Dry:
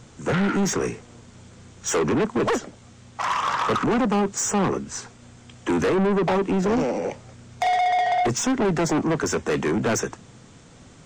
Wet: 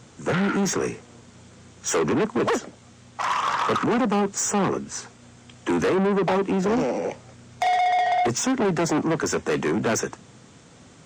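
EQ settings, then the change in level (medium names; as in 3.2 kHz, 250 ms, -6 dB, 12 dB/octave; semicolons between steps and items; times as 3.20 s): high-pass 110 Hz 6 dB/octave; 0.0 dB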